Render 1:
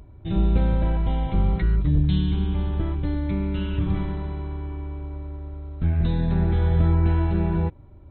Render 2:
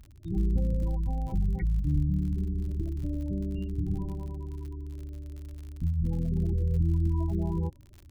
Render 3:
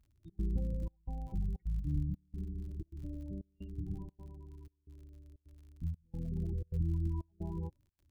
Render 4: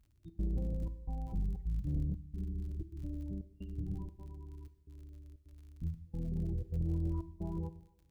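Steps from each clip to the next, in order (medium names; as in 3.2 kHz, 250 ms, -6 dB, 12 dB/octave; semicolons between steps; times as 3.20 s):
spectral gate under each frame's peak -20 dB strong; crackle 64 per s -33 dBFS; trim -6.5 dB
trance gate "xxx.xxxxx..xx" 154 bpm -24 dB; upward expansion 1.5:1, over -46 dBFS; trim -6.5 dB
two-slope reverb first 0.92 s, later 2.8 s, from -25 dB, DRR 11 dB; saturation -28 dBFS, distortion -18 dB; trim +1.5 dB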